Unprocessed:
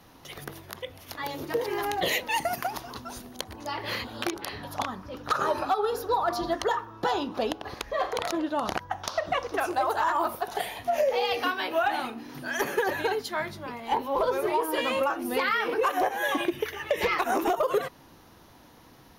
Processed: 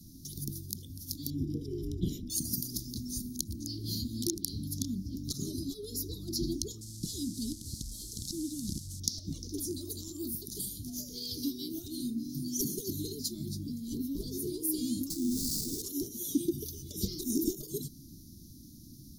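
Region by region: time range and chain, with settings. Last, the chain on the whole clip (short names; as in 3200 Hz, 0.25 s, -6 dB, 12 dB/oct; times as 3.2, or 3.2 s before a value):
1.3–2.3 polynomial smoothing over 25 samples + low shelf 73 Hz +11.5 dB
6.81–9 delta modulation 64 kbps, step -38.5 dBFS + bell 500 Hz -10.5 dB 2.1 oct
15.1–15.82 air absorption 400 m + sample-rate reducer 3200 Hz, jitter 20% + hard clip -28.5 dBFS
whole clip: inverse Chebyshev band-stop 500–2800 Hz, stop band 40 dB; band shelf 1200 Hz -15 dB; gain +6.5 dB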